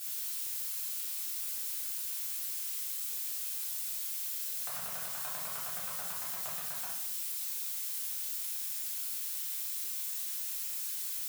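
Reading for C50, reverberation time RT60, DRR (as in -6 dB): 2.0 dB, 0.80 s, -8.0 dB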